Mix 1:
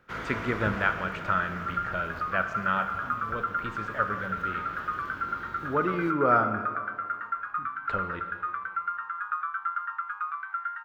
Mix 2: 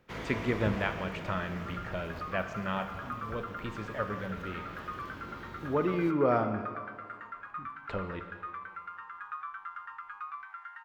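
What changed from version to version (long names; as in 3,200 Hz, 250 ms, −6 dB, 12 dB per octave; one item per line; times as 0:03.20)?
master: add parametric band 1,400 Hz −13.5 dB 0.49 octaves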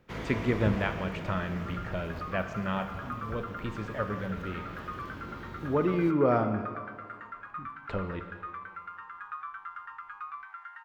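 master: add low-shelf EQ 380 Hz +4.5 dB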